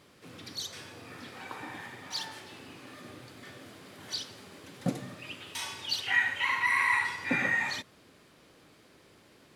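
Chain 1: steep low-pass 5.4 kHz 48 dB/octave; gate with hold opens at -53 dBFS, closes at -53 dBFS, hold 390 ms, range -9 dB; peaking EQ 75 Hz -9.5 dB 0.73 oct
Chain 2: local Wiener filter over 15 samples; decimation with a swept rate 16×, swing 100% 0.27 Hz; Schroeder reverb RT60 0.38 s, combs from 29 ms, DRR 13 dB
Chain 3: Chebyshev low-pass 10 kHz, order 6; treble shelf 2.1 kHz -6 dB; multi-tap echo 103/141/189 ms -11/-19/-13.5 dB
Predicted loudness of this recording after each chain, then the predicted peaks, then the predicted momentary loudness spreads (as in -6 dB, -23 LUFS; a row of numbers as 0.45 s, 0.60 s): -31.0 LUFS, -30.0 LUFS, -33.5 LUFS; -14.0 dBFS, -14.0 dBFS, -17.0 dBFS; 23 LU, 23 LU, 21 LU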